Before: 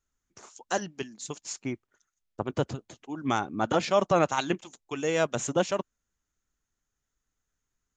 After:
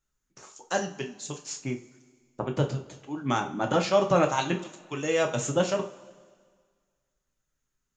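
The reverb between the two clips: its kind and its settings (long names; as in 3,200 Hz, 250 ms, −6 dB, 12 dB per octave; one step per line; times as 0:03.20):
coupled-rooms reverb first 0.3 s, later 1.8 s, from −20 dB, DRR 2.5 dB
level −1 dB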